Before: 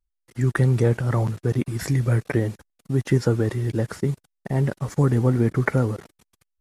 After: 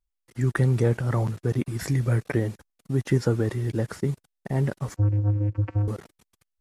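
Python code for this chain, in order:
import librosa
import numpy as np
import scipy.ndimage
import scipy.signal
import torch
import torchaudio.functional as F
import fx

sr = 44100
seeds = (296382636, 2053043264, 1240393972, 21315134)

y = fx.vocoder(x, sr, bands=8, carrier='square', carrier_hz=103.0, at=(4.96, 5.88))
y = F.gain(torch.from_numpy(y), -2.5).numpy()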